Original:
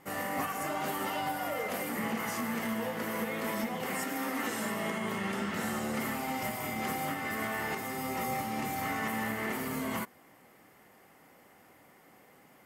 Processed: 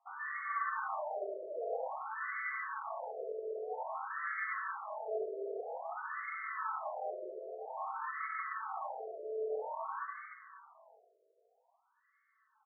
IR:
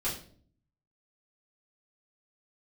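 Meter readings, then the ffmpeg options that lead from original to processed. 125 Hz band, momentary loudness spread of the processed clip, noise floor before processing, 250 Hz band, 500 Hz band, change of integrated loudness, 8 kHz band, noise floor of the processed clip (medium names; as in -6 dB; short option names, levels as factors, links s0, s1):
under -40 dB, 6 LU, -60 dBFS, under -25 dB, -2.5 dB, -6.0 dB, under -40 dB, -76 dBFS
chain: -filter_complex "[0:a]afwtdn=0.00794,highpass=f=350:w=0.5412,highpass=f=350:w=1.3066,aecho=1:1:4.6:0.96,alimiter=level_in=2.66:limit=0.0631:level=0:latency=1,volume=0.376,asplit=2[s0][s1];[s1]aecho=0:1:60|156|309.6|555.4|948.6:0.631|0.398|0.251|0.158|0.1[s2];[s0][s2]amix=inputs=2:normalize=0,flanger=delay=4.1:depth=3.1:regen=22:speed=0.17:shape=sinusoidal,asplit=9[s3][s4][s5][s6][s7][s8][s9][s10][s11];[s4]adelay=110,afreqshift=42,volume=0.266[s12];[s5]adelay=220,afreqshift=84,volume=0.168[s13];[s6]adelay=330,afreqshift=126,volume=0.106[s14];[s7]adelay=440,afreqshift=168,volume=0.0668[s15];[s8]adelay=550,afreqshift=210,volume=0.0417[s16];[s9]adelay=660,afreqshift=252,volume=0.0263[s17];[s10]adelay=770,afreqshift=294,volume=0.0166[s18];[s11]adelay=880,afreqshift=336,volume=0.0105[s19];[s3][s12][s13][s14][s15][s16][s17][s18][s19]amix=inputs=9:normalize=0,asplit=2[s20][s21];[1:a]atrim=start_sample=2205,asetrate=36603,aresample=44100[s22];[s21][s22]afir=irnorm=-1:irlink=0,volume=0.251[s23];[s20][s23]amix=inputs=2:normalize=0,afftfilt=real='re*between(b*sr/1024,460*pow(1600/460,0.5+0.5*sin(2*PI*0.51*pts/sr))/1.41,460*pow(1600/460,0.5+0.5*sin(2*PI*0.51*pts/sr))*1.41)':imag='im*between(b*sr/1024,460*pow(1600/460,0.5+0.5*sin(2*PI*0.51*pts/sr))/1.41,460*pow(1600/460,0.5+0.5*sin(2*PI*0.51*pts/sr))*1.41)':win_size=1024:overlap=0.75,volume=1.68"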